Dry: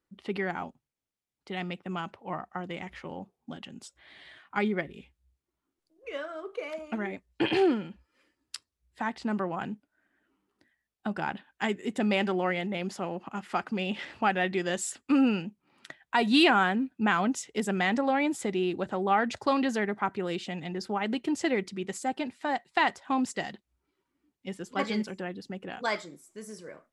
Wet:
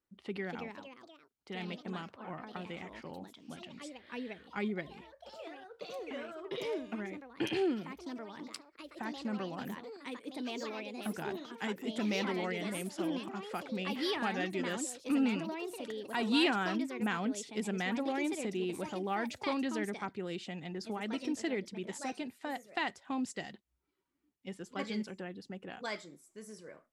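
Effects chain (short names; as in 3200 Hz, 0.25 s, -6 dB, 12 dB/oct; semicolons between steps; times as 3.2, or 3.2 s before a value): dynamic EQ 1000 Hz, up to -6 dB, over -39 dBFS, Q 0.77; echoes that change speed 0.287 s, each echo +3 st, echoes 3, each echo -6 dB; gain -6 dB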